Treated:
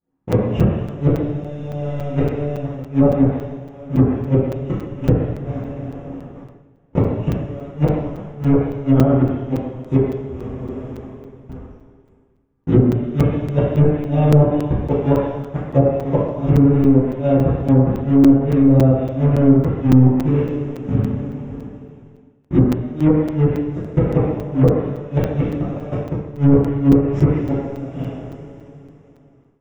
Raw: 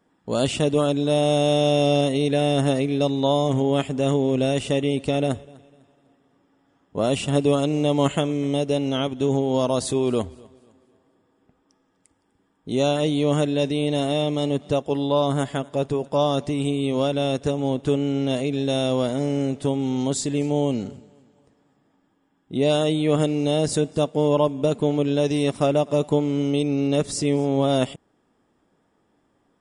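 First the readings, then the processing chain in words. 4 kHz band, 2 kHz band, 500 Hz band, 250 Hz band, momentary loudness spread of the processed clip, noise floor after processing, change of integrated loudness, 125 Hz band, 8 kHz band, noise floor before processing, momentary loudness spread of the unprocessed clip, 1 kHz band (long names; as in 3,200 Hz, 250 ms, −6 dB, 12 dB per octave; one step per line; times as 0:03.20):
below −15 dB, −3.0 dB, +0.5 dB, +6.5 dB, 15 LU, −52 dBFS, +5.0 dB, +10.0 dB, below −10 dB, −67 dBFS, 4 LU, −1.5 dB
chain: one scale factor per block 3 bits
moving average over 10 samples
dynamic equaliser 310 Hz, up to −4 dB, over −34 dBFS, Q 4.1
flutter between parallel walls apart 10.6 metres, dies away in 0.39 s
noise gate with hold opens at −51 dBFS
spectral tilt −3 dB per octave
fake sidechain pumping 140 BPM, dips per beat 1, −10 dB, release 89 ms
gate with flip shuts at −8 dBFS, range −30 dB
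coupled-rooms reverb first 0.91 s, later 3.2 s, from −19 dB, DRR −9.5 dB
automatic gain control gain up to 14 dB
treble cut that deepens with the level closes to 1,100 Hz, closed at −7 dBFS
regular buffer underruns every 0.28 s, samples 256, zero, from 0:00.32
level −1 dB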